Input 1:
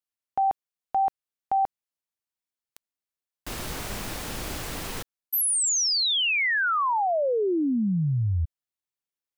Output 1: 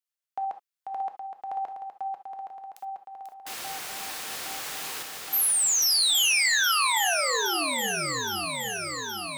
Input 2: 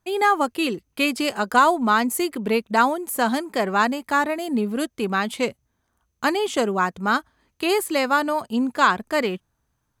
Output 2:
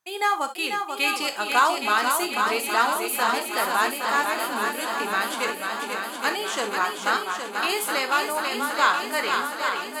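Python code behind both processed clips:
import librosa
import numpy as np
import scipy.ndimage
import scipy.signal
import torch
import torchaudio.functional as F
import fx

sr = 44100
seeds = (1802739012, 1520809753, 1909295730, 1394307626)

p1 = fx.highpass(x, sr, hz=1300.0, slope=6)
p2 = p1 + fx.echo_swing(p1, sr, ms=818, ratio=1.5, feedback_pct=66, wet_db=-5.5, dry=0)
y = fx.rev_gated(p2, sr, seeds[0], gate_ms=90, shape='flat', drr_db=7.5)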